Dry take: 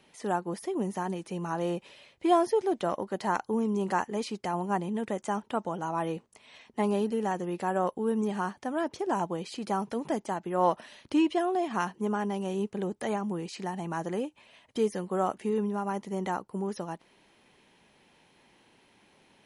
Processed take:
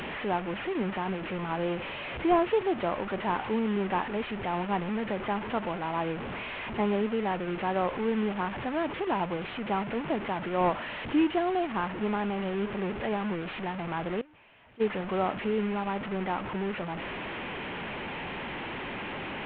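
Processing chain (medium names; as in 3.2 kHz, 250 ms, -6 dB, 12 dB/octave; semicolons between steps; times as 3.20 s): one-bit delta coder 16 kbps, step -30 dBFS; 14.21–14.90 s: gate -26 dBFS, range -21 dB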